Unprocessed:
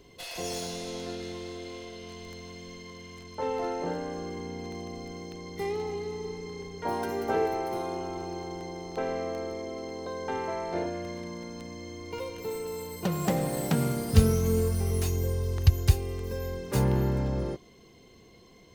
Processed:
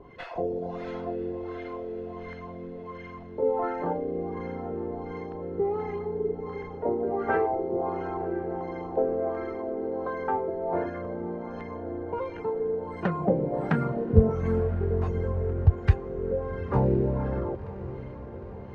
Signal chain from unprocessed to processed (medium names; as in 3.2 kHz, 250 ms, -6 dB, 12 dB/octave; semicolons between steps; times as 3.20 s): reverb removal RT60 0.63 s; in parallel at -2 dB: compression, threshold -39 dBFS, peak gain reduction 24.5 dB; on the sum: LFO low-pass sine 1.4 Hz 420–1700 Hz; echo that smears into a reverb 1025 ms, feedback 64%, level -14.5 dB